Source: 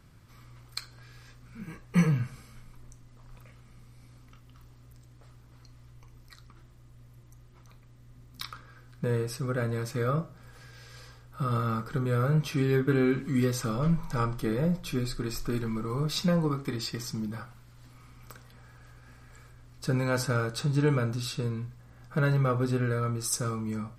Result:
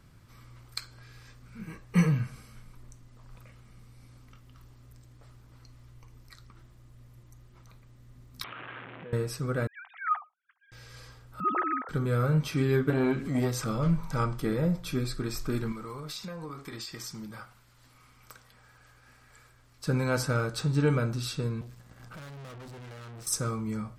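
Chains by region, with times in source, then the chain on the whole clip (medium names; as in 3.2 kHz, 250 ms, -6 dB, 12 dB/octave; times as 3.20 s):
8.44–9.13 s: one-bit delta coder 16 kbps, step -33.5 dBFS + compression, threshold -37 dBFS + Bessel high-pass 270 Hz
9.67–10.72 s: formants replaced by sine waves + steep high-pass 720 Hz 96 dB/octave + expander -50 dBFS
11.40–11.89 s: formants replaced by sine waves + high-pass 270 Hz
12.90–13.68 s: upward compressor, threshold -28 dBFS + transformer saturation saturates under 350 Hz
15.72–19.87 s: bass shelf 430 Hz -10 dB + compression 12:1, threshold -35 dBFS
21.61–23.27 s: expander -49 dBFS + valve stage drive 44 dB, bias 0.5 + three bands compressed up and down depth 70%
whole clip: none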